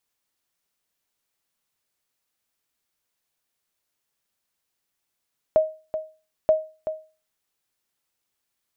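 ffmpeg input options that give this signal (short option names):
-f lavfi -i "aevalsrc='0.316*(sin(2*PI*628*mod(t,0.93))*exp(-6.91*mod(t,0.93)/0.34)+0.299*sin(2*PI*628*max(mod(t,0.93)-0.38,0))*exp(-6.91*max(mod(t,0.93)-0.38,0)/0.34))':d=1.86:s=44100"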